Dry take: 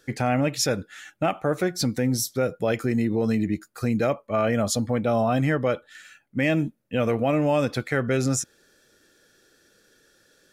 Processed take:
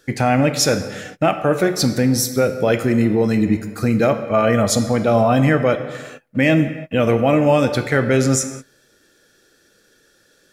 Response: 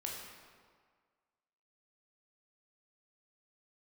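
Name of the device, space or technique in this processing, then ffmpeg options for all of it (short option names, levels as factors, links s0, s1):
keyed gated reverb: -filter_complex "[0:a]asplit=3[s0][s1][s2];[1:a]atrim=start_sample=2205[s3];[s1][s3]afir=irnorm=-1:irlink=0[s4];[s2]apad=whole_len=464311[s5];[s4][s5]sidechaingate=range=0.0224:threshold=0.00355:ratio=16:detection=peak,volume=0.708[s6];[s0][s6]amix=inputs=2:normalize=0,volume=1.5"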